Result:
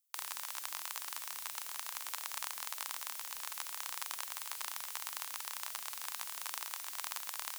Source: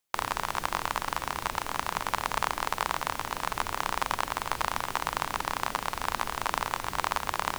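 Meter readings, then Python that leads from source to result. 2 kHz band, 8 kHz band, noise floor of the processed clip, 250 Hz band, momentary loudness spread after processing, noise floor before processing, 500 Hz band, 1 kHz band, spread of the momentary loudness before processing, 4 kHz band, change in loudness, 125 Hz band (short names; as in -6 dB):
-13.0 dB, -1.0 dB, -46 dBFS, under -25 dB, 1 LU, -42 dBFS, -23.0 dB, -18.0 dB, 2 LU, -7.0 dB, -8.5 dB, under -35 dB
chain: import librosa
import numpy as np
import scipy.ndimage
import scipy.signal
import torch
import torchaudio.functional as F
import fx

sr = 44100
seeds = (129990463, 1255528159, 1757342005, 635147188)

y = np.diff(x, prepend=0.0)
y = y * 10.0 ** (-1.5 / 20.0)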